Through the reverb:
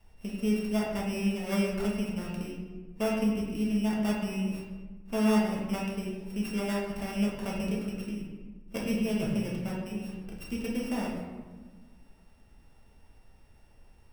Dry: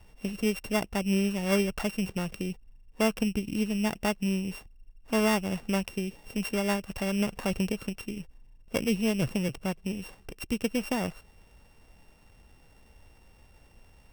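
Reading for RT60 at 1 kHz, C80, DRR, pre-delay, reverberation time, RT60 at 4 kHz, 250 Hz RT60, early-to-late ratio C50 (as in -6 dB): 1.3 s, 4.0 dB, -5.0 dB, 4 ms, 1.4 s, 0.75 s, 2.0 s, 2.0 dB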